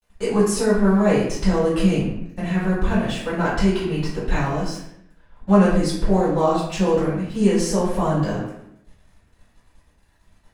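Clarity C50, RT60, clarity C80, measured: 1.5 dB, 0.75 s, 5.0 dB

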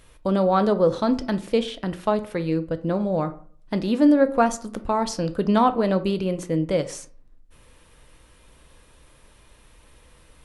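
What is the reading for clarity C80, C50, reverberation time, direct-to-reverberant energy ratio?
20.0 dB, 15.5 dB, 0.50 s, 9.5 dB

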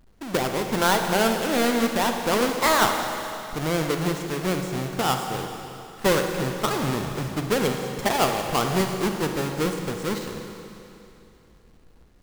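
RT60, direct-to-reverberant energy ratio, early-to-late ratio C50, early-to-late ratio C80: 2.9 s, 4.0 dB, 4.5 dB, 5.5 dB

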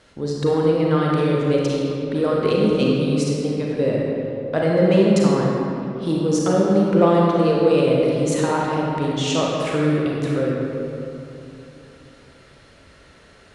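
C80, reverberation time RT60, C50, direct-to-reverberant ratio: 0.0 dB, 2.9 s, -2.0 dB, -3.5 dB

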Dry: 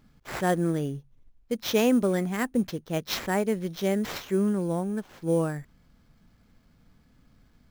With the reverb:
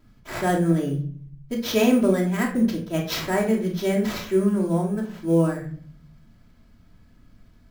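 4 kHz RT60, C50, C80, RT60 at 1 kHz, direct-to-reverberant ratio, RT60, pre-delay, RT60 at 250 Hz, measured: 0.35 s, 7.5 dB, 12.5 dB, 0.45 s, -7.5 dB, 0.50 s, 3 ms, 0.80 s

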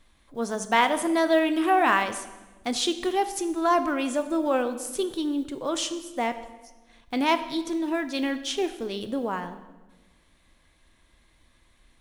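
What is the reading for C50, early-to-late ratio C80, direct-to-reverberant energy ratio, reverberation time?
12.5 dB, 14.0 dB, 9.5 dB, 1.2 s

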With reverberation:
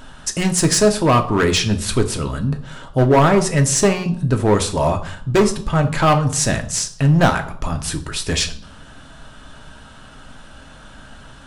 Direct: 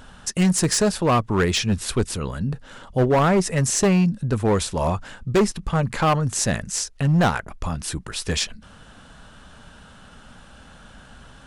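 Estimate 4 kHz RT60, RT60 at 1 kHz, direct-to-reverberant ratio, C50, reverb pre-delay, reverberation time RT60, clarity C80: 0.50 s, 0.60 s, 5.0 dB, 13.5 dB, 3 ms, 0.60 s, 17.0 dB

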